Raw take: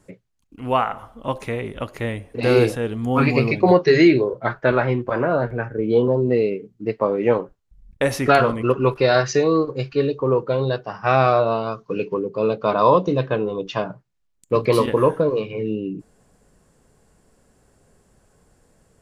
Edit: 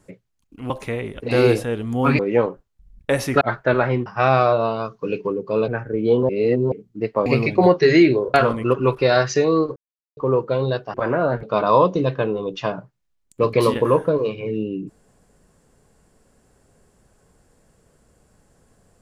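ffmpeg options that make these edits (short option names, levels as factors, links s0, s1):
-filter_complex "[0:a]asplit=15[s0][s1][s2][s3][s4][s5][s6][s7][s8][s9][s10][s11][s12][s13][s14];[s0]atrim=end=0.702[s15];[s1]atrim=start=1.298:end=1.802[s16];[s2]atrim=start=2.318:end=3.312[s17];[s3]atrim=start=7.108:end=8.332[s18];[s4]atrim=start=4.388:end=5.042[s19];[s5]atrim=start=10.928:end=12.552[s20];[s6]atrim=start=5.528:end=6.142[s21];[s7]atrim=start=6.138:end=6.572,asetpts=PTS-STARTPTS,areverse[s22];[s8]atrim=start=6.568:end=7.112[s23];[s9]atrim=start=3.308:end=4.392[s24];[s10]atrim=start=8.328:end=9.75,asetpts=PTS-STARTPTS,afade=t=out:st=1.418:d=0.004:c=hsin[s25];[s11]atrim=start=9.75:end=10.16,asetpts=PTS-STARTPTS,volume=0[s26];[s12]atrim=start=10.16:end=10.932,asetpts=PTS-STARTPTS,afade=t=in:d=0.004:c=hsin[s27];[s13]atrim=start=5.038:end=5.532[s28];[s14]atrim=start=12.548[s29];[s15][s16]acrossfade=d=0.004:c1=hsin:c2=hsin[s30];[s30][s17]acrossfade=d=0.004:c1=hsin:c2=hsin[s31];[s31][s18]acrossfade=d=0.004:c1=hsin:c2=hsin[s32];[s32][s19]acrossfade=d=0.004:c1=hsin:c2=hsin[s33];[s33][s20]acrossfade=d=0.004:c1=hsin:c2=hsin[s34];[s34][s21]acrossfade=d=0.004:c1=hsin:c2=hsin[s35];[s35][s22]acrossfade=d=0.004:c1=hsin:c2=hsin[s36];[s36][s23]acrossfade=d=0.004:c1=hsin:c2=hsin[s37];[s37][s24]acrossfade=d=0.004:c1=hsin:c2=hsin[s38];[s25][s26][s27]concat=n=3:v=0:a=1[s39];[s38][s39]acrossfade=d=0.004:c1=hsin:c2=hsin[s40];[s40][s28]acrossfade=d=0.004:c1=hsin:c2=hsin[s41];[s41][s29]acrossfade=d=0.004:c1=hsin:c2=hsin"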